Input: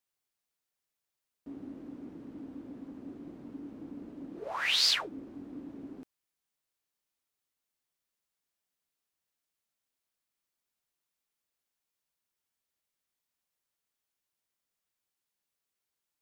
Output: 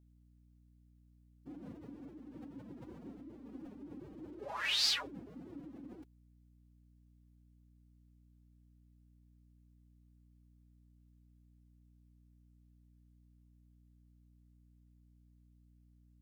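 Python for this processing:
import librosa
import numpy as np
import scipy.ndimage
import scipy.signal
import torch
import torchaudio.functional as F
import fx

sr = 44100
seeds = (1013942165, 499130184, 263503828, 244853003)

y = fx.pitch_keep_formants(x, sr, semitones=11.0)
y = fx.add_hum(y, sr, base_hz=60, snr_db=17)
y = y * 10.0 ** (-4.0 / 20.0)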